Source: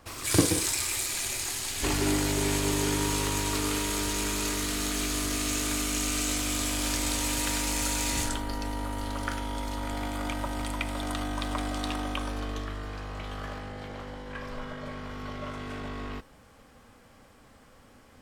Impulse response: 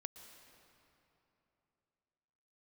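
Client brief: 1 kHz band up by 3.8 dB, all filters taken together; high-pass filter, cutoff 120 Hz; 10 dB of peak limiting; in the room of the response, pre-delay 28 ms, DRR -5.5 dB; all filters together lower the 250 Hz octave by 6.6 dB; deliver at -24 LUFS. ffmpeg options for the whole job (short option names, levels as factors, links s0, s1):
-filter_complex "[0:a]highpass=120,equalizer=f=250:t=o:g=-8.5,equalizer=f=1000:t=o:g=5,alimiter=limit=0.1:level=0:latency=1,asplit=2[s0][s1];[1:a]atrim=start_sample=2205,adelay=28[s2];[s1][s2]afir=irnorm=-1:irlink=0,volume=2.99[s3];[s0][s3]amix=inputs=2:normalize=0,volume=1.19"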